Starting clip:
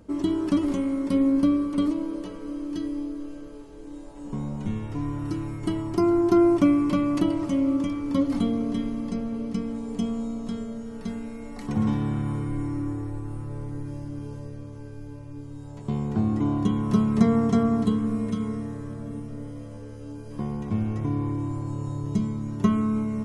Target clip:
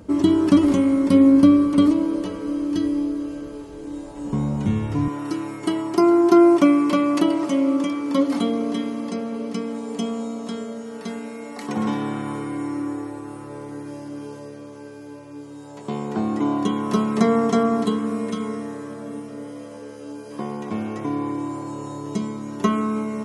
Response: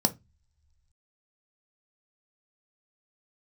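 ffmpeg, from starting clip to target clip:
-af "asetnsamples=n=441:p=0,asendcmd='5.08 highpass f 330',highpass=49,volume=2.51"

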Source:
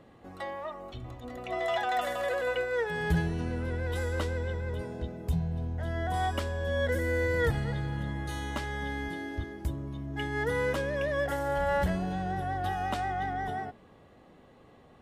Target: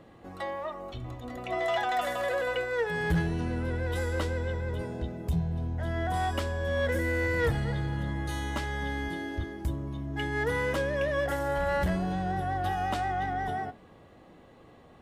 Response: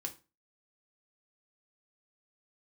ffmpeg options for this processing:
-filter_complex "[0:a]asoftclip=type=tanh:threshold=0.0841,asplit=2[s0][s1];[1:a]atrim=start_sample=2205[s2];[s1][s2]afir=irnorm=-1:irlink=0,volume=0.422[s3];[s0][s3]amix=inputs=2:normalize=0"

